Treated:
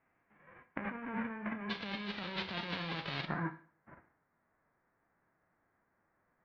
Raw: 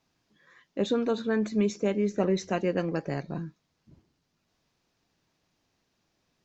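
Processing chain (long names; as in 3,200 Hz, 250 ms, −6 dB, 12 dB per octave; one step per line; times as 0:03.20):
spectral envelope flattened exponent 0.1
Butterworth low-pass 2,200 Hz 48 dB per octave, from 0:01.69 4,100 Hz, from 0:03.25 1,900 Hz
brickwall limiter −22.5 dBFS, peak gain reduction 7.5 dB
compressor whose output falls as the input rises −40 dBFS, ratio −1
convolution reverb RT60 0.45 s, pre-delay 22 ms, DRR 10.5 dB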